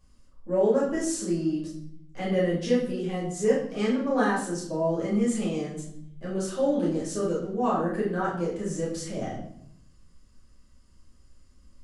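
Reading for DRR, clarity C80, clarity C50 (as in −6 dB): −7.0 dB, 8.0 dB, 4.5 dB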